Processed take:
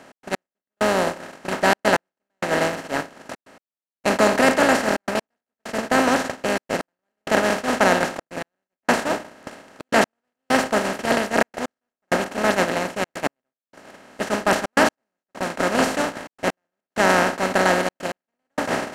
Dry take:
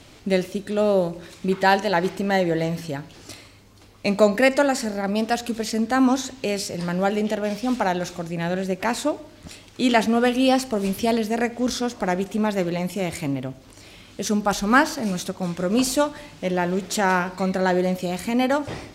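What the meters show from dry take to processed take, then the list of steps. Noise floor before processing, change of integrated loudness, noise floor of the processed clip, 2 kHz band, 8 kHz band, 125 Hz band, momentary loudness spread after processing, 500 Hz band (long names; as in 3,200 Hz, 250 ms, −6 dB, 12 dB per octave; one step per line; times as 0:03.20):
−48 dBFS, +1.0 dB, below −85 dBFS, +4.0 dB, +1.0 dB, −5.0 dB, 15 LU, +0.5 dB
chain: compressor on every frequency bin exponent 0.2
noise gate −9 dBFS, range −28 dB
gate pattern "x.x....xxxxxxx" 130 BPM −60 dB
level −5.5 dB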